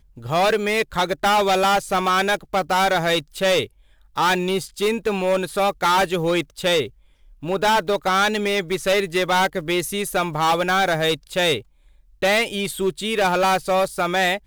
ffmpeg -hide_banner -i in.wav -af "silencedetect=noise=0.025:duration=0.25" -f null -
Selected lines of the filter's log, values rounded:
silence_start: 3.66
silence_end: 4.17 | silence_duration: 0.51
silence_start: 6.88
silence_end: 7.43 | silence_duration: 0.55
silence_start: 11.60
silence_end: 12.22 | silence_duration: 0.62